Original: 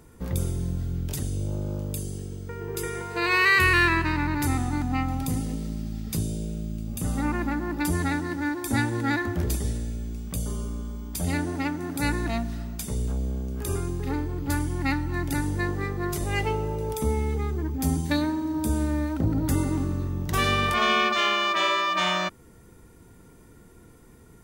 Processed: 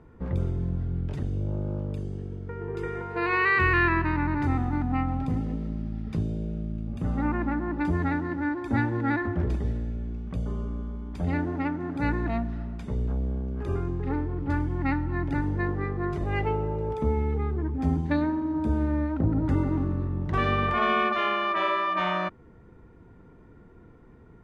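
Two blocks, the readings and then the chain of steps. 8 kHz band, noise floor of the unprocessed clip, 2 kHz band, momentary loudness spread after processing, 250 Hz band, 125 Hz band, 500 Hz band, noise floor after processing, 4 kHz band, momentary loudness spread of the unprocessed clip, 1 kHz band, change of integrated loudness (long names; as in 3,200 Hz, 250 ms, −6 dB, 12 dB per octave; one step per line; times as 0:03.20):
below −25 dB, −51 dBFS, −3.5 dB, 9 LU, 0.0 dB, 0.0 dB, 0.0 dB, −52 dBFS, −11.0 dB, 11 LU, −0.5 dB, −1.5 dB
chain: low-pass filter 1,800 Hz 12 dB per octave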